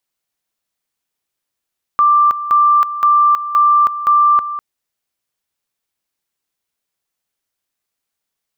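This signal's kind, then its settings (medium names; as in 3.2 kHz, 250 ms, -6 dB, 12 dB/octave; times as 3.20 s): two-level tone 1.18 kHz -7.5 dBFS, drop 12.5 dB, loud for 0.32 s, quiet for 0.20 s, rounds 5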